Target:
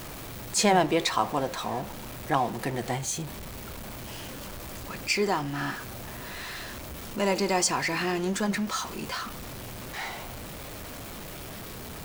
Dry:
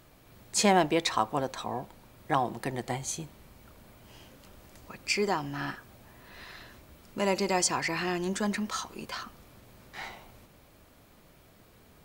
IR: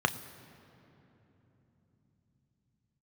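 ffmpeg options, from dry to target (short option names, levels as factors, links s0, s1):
-af "aeval=exprs='val(0)+0.5*0.0158*sgn(val(0))':c=same,flanger=delay=4.2:depth=6.8:regen=-85:speed=1.8:shape=triangular,volume=1.88"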